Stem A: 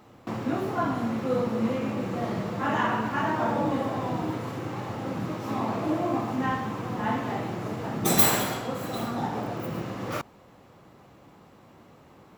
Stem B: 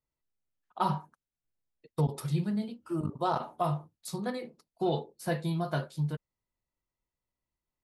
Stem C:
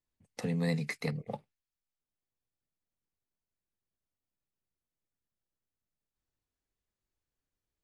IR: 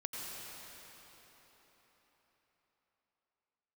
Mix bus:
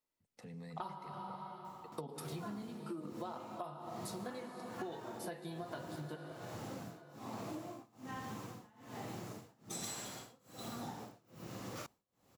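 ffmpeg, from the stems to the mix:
-filter_complex "[0:a]acrossover=split=8300[s0][s1];[s1]acompressor=threshold=0.00224:ratio=4:attack=1:release=60[s2];[s0][s2]amix=inputs=2:normalize=0,bass=f=250:g=1,treble=f=4000:g=14,tremolo=f=1.2:d=0.97,adelay=1650,volume=0.266[s3];[1:a]highpass=f=200:w=0.5412,highpass=f=200:w=1.3066,volume=0.794,asplit=2[s4][s5];[s5]volume=0.447[s6];[2:a]alimiter=level_in=1.68:limit=0.0631:level=0:latency=1:release=11,volume=0.596,volume=0.158,asplit=2[s7][s8];[s8]volume=0.355[s9];[3:a]atrim=start_sample=2205[s10];[s6][s9]amix=inputs=2:normalize=0[s11];[s11][s10]afir=irnorm=-1:irlink=0[s12];[s3][s4][s7][s12]amix=inputs=4:normalize=0,acompressor=threshold=0.01:ratio=20"

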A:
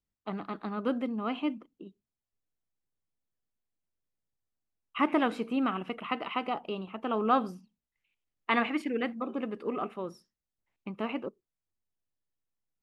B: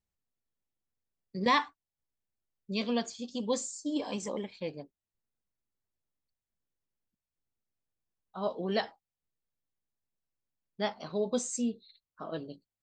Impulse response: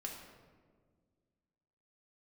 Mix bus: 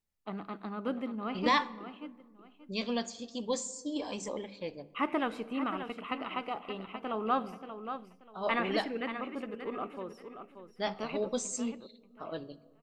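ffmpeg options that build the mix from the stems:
-filter_complex "[0:a]volume=0.562,asplit=3[s0][s1][s2];[s1]volume=0.282[s3];[s2]volume=0.398[s4];[1:a]bandreject=f=50:t=h:w=6,bandreject=f=100:t=h:w=6,bandreject=f=150:t=h:w=6,bandreject=f=200:t=h:w=6,volume=0.794,asplit=2[s5][s6];[s6]volume=0.266[s7];[2:a]atrim=start_sample=2205[s8];[s3][s7]amix=inputs=2:normalize=0[s9];[s9][s8]afir=irnorm=-1:irlink=0[s10];[s4]aecho=0:1:582|1164|1746|2328:1|0.25|0.0625|0.0156[s11];[s0][s5][s10][s11]amix=inputs=4:normalize=0,asubboost=boost=4.5:cutoff=79"

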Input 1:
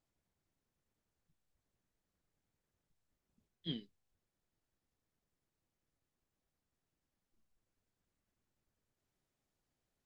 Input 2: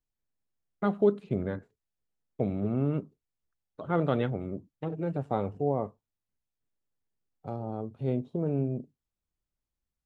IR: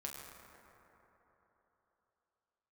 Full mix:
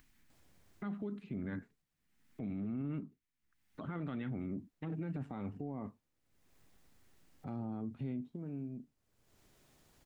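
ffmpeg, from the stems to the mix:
-filter_complex "[0:a]adelay=300,volume=1,asplit=3[s0][s1][s2];[s0]atrim=end=1.82,asetpts=PTS-STARTPTS,afade=t=out:st=1.816:d=0.004:c=hsin[s3];[s1]atrim=start=1.82:end=4.34,asetpts=PTS-STARTPTS,volume=0[s4];[s2]atrim=start=4.34,asetpts=PTS-STARTPTS,afade=t=in:d=0.004:c=hsin[s5];[s3][s4][s5]concat=n=3:v=0:a=1,asplit=2[s6][s7];[s7]volume=0.562[s8];[1:a]equalizer=f=250:t=o:w=1:g=10,equalizer=f=500:t=o:w=1:g=-9,equalizer=f=2000:t=o:w=1:g=9,alimiter=limit=0.0944:level=0:latency=1:release=420,volume=0.75,afade=t=out:st=8.1:d=0.28:silence=0.251189[s9];[s8]aecho=0:1:116|232|348|464|580|696|812:1|0.51|0.26|0.133|0.0677|0.0345|0.0176[s10];[s6][s9][s10]amix=inputs=3:normalize=0,acompressor=mode=upward:threshold=0.00282:ratio=2.5,alimiter=level_in=2.66:limit=0.0631:level=0:latency=1:release=32,volume=0.376"

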